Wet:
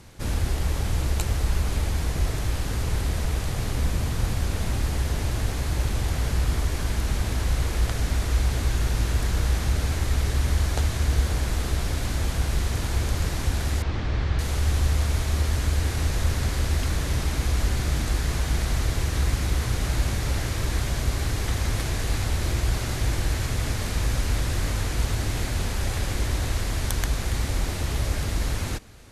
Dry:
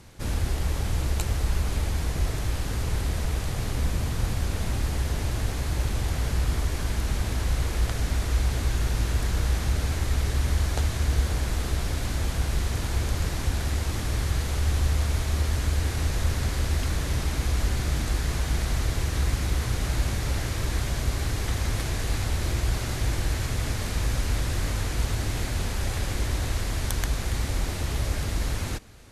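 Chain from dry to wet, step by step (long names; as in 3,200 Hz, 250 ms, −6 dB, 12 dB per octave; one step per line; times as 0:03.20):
0:13.82–0:14.39: Bessel low-pass filter 3,300 Hz, order 4
level +1.5 dB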